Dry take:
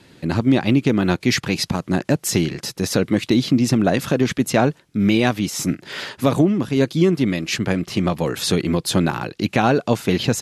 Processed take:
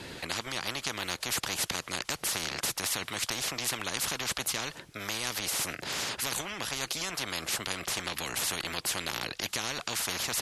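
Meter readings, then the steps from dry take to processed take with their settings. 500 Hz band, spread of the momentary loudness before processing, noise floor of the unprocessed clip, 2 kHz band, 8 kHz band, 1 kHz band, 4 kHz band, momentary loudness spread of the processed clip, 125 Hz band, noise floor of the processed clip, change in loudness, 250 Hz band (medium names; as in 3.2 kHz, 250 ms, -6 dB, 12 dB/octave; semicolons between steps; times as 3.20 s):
-20.0 dB, 5 LU, -55 dBFS, -7.0 dB, -2.0 dB, -11.5 dB, -4.5 dB, 3 LU, -24.0 dB, -54 dBFS, -12.0 dB, -26.5 dB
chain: spectrum-flattening compressor 10:1; trim -8 dB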